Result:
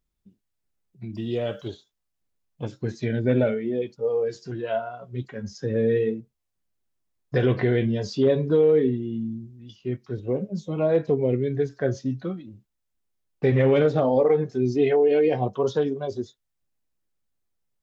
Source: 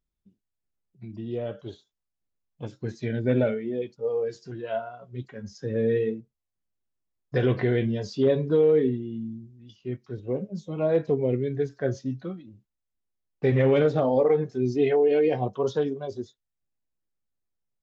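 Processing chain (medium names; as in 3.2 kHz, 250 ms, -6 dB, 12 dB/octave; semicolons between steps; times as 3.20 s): 1.15–1.68 s: treble shelf 2.1 kHz +12 dB; in parallel at -2.5 dB: compression, threshold -30 dBFS, peak gain reduction 12.5 dB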